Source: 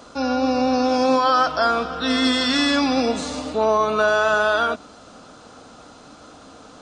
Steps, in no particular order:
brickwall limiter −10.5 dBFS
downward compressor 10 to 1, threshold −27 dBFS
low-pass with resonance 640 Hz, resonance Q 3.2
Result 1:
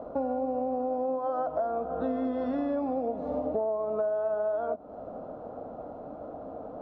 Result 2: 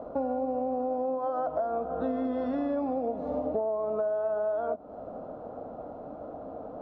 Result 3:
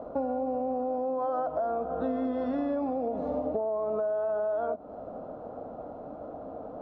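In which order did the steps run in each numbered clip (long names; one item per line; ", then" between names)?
low-pass with resonance, then downward compressor, then brickwall limiter
brickwall limiter, then low-pass with resonance, then downward compressor
low-pass with resonance, then brickwall limiter, then downward compressor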